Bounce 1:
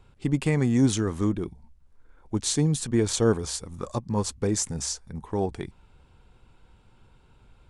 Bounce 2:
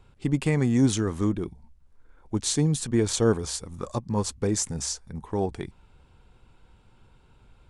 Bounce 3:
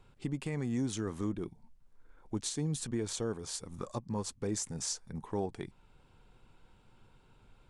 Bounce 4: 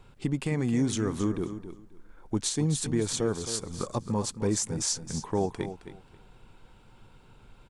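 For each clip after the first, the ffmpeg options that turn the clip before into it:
ffmpeg -i in.wav -af anull out.wav
ffmpeg -i in.wav -af "alimiter=limit=-21dB:level=0:latency=1:release=465,equalizer=frequency=64:width=2.8:gain=-15,volume=-3.5dB" out.wav
ffmpeg -i in.wav -af "aecho=1:1:267|534|801:0.282|0.0535|0.0102,volume=7dB" out.wav

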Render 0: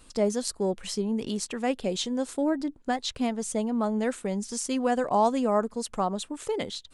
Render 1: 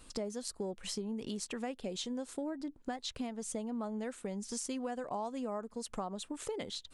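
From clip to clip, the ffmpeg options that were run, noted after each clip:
ffmpeg -i in.wav -af "acompressor=threshold=-34dB:ratio=6,volume=-2dB" out.wav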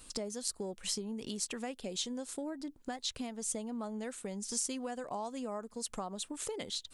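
ffmpeg -i in.wav -af "highshelf=frequency=3500:gain=9,volume=-1.5dB" out.wav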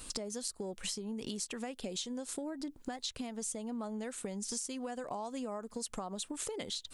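ffmpeg -i in.wav -af "acompressor=threshold=-43dB:ratio=6,volume=6.5dB" out.wav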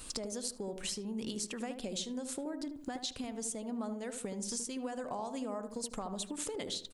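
ffmpeg -i in.wav -filter_complex "[0:a]asplit=2[link_01][link_02];[link_02]adelay=76,lowpass=frequency=920:poles=1,volume=-6dB,asplit=2[link_03][link_04];[link_04]adelay=76,lowpass=frequency=920:poles=1,volume=0.47,asplit=2[link_05][link_06];[link_06]adelay=76,lowpass=frequency=920:poles=1,volume=0.47,asplit=2[link_07][link_08];[link_08]adelay=76,lowpass=frequency=920:poles=1,volume=0.47,asplit=2[link_09][link_10];[link_10]adelay=76,lowpass=frequency=920:poles=1,volume=0.47,asplit=2[link_11][link_12];[link_12]adelay=76,lowpass=frequency=920:poles=1,volume=0.47[link_13];[link_01][link_03][link_05][link_07][link_09][link_11][link_13]amix=inputs=7:normalize=0" out.wav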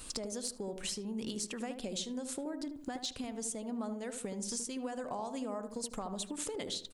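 ffmpeg -i in.wav -af "asoftclip=type=hard:threshold=-27dB" out.wav

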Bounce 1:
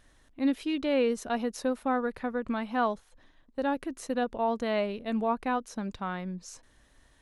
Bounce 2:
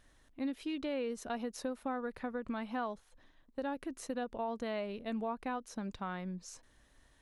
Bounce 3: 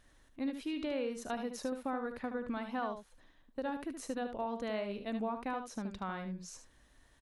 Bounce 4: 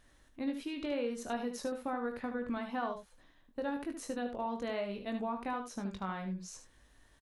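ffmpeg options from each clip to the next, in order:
ffmpeg -i in.wav -af "acompressor=threshold=-31dB:ratio=3,volume=-4dB" out.wav
ffmpeg -i in.wav -af "aecho=1:1:74:0.398" out.wav
ffmpeg -i in.wav -filter_complex "[0:a]asplit=2[link_01][link_02];[link_02]adelay=21,volume=-7dB[link_03];[link_01][link_03]amix=inputs=2:normalize=0" out.wav

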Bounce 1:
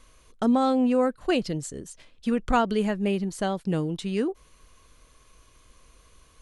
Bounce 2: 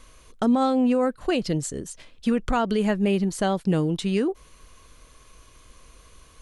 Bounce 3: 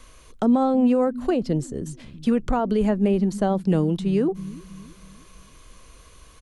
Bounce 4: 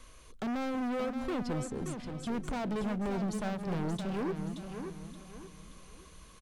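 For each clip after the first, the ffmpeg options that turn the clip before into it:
ffmpeg -i in.wav -af "alimiter=limit=-19dB:level=0:latency=1:release=149,volume=5dB" out.wav
ffmpeg -i in.wav -filter_complex "[0:a]acrossover=split=230|1100[link_01][link_02][link_03];[link_01]aecho=1:1:323|646|969|1292|1615:0.398|0.163|0.0669|0.0274|0.0112[link_04];[link_03]acompressor=threshold=-42dB:ratio=10[link_05];[link_04][link_02][link_05]amix=inputs=3:normalize=0,volume=2dB" out.wav
ffmpeg -i in.wav -filter_complex "[0:a]asoftclip=type=hard:threshold=-26.5dB,asplit=2[link_01][link_02];[link_02]aecho=0:1:576|1152|1728|2304:0.422|0.148|0.0517|0.0181[link_03];[link_01][link_03]amix=inputs=2:normalize=0,volume=-5.5dB" out.wav

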